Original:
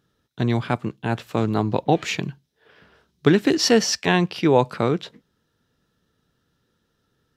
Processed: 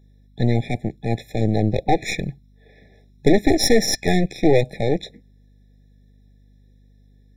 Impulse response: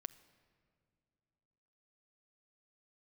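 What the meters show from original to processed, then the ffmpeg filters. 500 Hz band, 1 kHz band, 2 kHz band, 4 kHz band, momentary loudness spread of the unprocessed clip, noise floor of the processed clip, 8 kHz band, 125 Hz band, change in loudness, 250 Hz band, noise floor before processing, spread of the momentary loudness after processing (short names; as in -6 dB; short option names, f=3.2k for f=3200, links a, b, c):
+1.5 dB, -1.5 dB, -1.0 dB, -0.5 dB, 10 LU, -53 dBFS, +1.0 dB, +2.0 dB, +1.0 dB, +0.5 dB, -72 dBFS, 10 LU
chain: -filter_complex "[0:a]asplit=2[a][b];[b]aeval=exprs='0.211*(abs(mod(val(0)/0.211+3,4)-2)-1)':c=same,volume=-4.5dB[c];[a][c]amix=inputs=2:normalize=0,aeval=exprs='0.668*(cos(1*acos(clip(val(0)/0.668,-1,1)))-cos(1*PI/2))+0.188*(cos(4*acos(clip(val(0)/0.668,-1,1)))-cos(4*PI/2))':c=same,aeval=exprs='val(0)+0.00316*(sin(2*PI*50*n/s)+sin(2*PI*2*50*n/s)/2+sin(2*PI*3*50*n/s)/3+sin(2*PI*4*50*n/s)/4+sin(2*PI*5*50*n/s)/5)':c=same,afftfilt=real='re*eq(mod(floor(b*sr/1024/840),2),0)':imag='im*eq(mod(floor(b*sr/1024/840),2),0)':win_size=1024:overlap=0.75,volume=-1.5dB"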